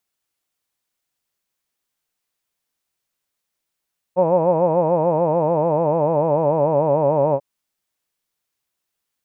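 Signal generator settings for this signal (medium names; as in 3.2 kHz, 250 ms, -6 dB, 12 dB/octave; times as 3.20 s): formant vowel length 3.24 s, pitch 173 Hz, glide -3 st, vibrato 6.8 Hz, vibrato depth 1.3 st, F1 560 Hz, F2 930 Hz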